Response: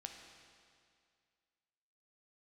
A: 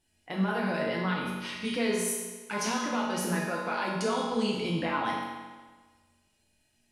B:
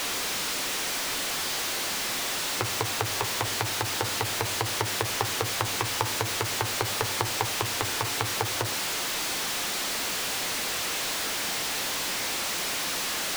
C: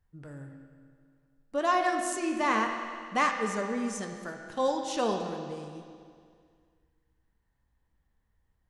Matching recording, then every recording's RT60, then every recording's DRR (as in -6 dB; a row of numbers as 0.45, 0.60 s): C; 1.4, 0.65, 2.2 s; -5.5, 9.5, 2.5 dB